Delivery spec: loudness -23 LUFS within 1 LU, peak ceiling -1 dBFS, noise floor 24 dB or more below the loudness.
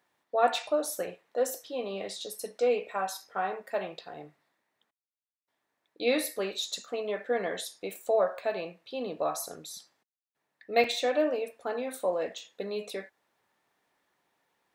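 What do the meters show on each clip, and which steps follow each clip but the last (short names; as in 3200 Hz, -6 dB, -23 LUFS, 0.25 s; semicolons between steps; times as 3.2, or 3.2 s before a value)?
dropouts 1; longest dropout 2.7 ms; loudness -31.5 LUFS; peak -11.5 dBFS; loudness target -23.0 LUFS
-> interpolate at 10.84, 2.7 ms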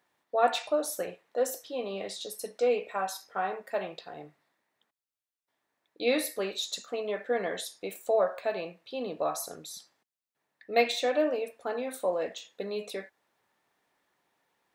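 dropouts 0; loudness -31.5 LUFS; peak -11.5 dBFS; loudness target -23.0 LUFS
-> gain +8.5 dB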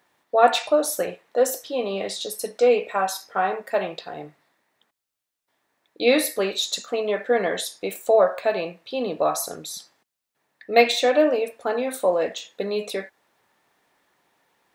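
loudness -23.0 LUFS; peak -3.0 dBFS; noise floor -84 dBFS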